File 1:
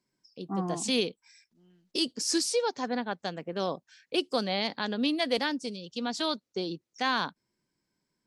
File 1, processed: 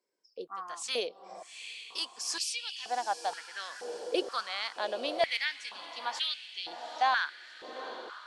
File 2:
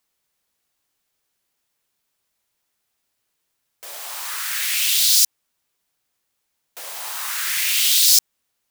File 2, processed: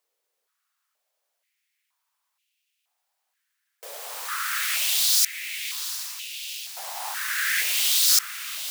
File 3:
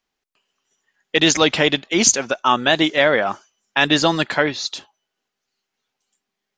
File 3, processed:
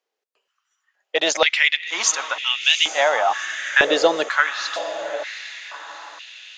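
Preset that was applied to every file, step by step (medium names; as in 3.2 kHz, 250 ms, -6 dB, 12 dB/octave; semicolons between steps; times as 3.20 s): echo that smears into a reverb 778 ms, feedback 55%, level -10.5 dB; step-sequenced high-pass 2.1 Hz 470–2700 Hz; trim -5 dB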